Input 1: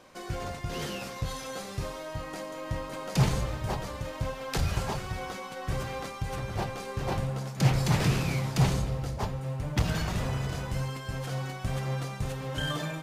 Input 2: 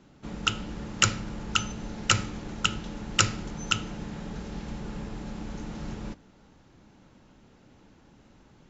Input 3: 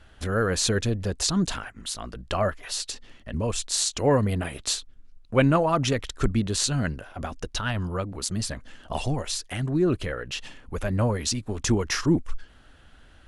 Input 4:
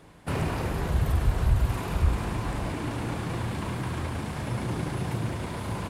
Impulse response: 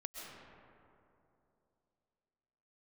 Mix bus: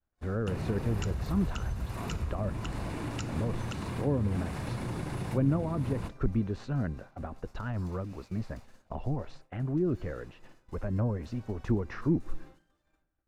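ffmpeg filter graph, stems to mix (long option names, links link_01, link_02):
-filter_complex "[0:a]highpass=520,alimiter=level_in=6dB:limit=-24dB:level=0:latency=1:release=160,volume=-6dB,asoftclip=type=tanh:threshold=-39dB,volume=-18.5dB,asplit=2[link_01][link_02];[link_02]volume=-4dB[link_03];[1:a]volume=-15dB[link_04];[2:a]lowpass=1300,volume=-5dB,asplit=2[link_05][link_06];[link_06]volume=-21.5dB[link_07];[3:a]acompressor=threshold=-29dB:ratio=6,adelay=200,volume=-2dB[link_08];[4:a]atrim=start_sample=2205[link_09];[link_03][link_07]amix=inputs=2:normalize=0[link_10];[link_10][link_09]afir=irnorm=-1:irlink=0[link_11];[link_01][link_04][link_05][link_08][link_11]amix=inputs=5:normalize=0,bandreject=frequency=3200:width=15,acrossover=split=370[link_12][link_13];[link_13]acompressor=threshold=-38dB:ratio=5[link_14];[link_12][link_14]amix=inputs=2:normalize=0,agate=range=-33dB:threshold=-40dB:ratio=3:detection=peak"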